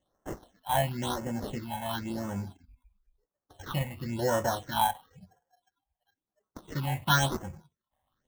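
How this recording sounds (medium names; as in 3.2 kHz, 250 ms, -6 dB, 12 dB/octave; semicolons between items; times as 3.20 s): aliases and images of a low sample rate 2.4 kHz, jitter 0%; phasing stages 6, 0.97 Hz, lowest notch 350–4000 Hz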